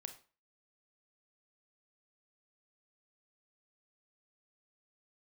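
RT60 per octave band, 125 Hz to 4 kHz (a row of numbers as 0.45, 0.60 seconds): 0.35, 0.35, 0.35, 0.40, 0.35, 0.30 seconds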